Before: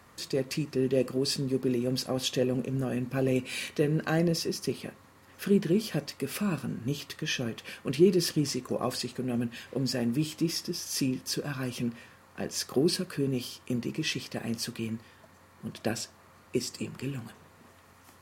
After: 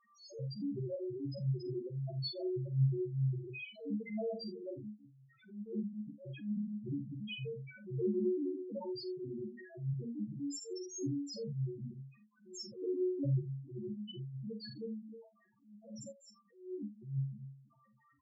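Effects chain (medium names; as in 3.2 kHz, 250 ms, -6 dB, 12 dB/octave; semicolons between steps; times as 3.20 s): chunks repeated in reverse 163 ms, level -9 dB; treble shelf 9.3 kHz -8 dB; harmony voices +5 st -5 dB; peak limiter -17.5 dBFS, peak gain reduction 9.5 dB; waveshaping leveller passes 1; inharmonic resonator 67 Hz, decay 0.48 s, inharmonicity 0.008; loudest bins only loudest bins 1; early reflections 46 ms -9 dB, 74 ms -17.5 dB; attacks held to a fixed rise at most 130 dB/s; trim +7 dB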